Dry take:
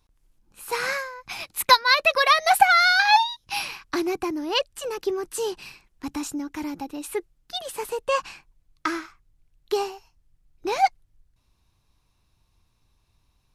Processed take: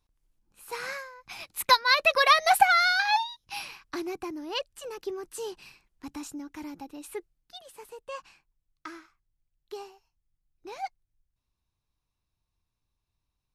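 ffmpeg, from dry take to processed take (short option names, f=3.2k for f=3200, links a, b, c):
-af "volume=-1.5dB,afade=t=in:st=1.19:d=1.11:silence=0.421697,afade=t=out:st=2.3:d=0.91:silence=0.446684,afade=t=out:st=7.15:d=0.48:silence=0.446684"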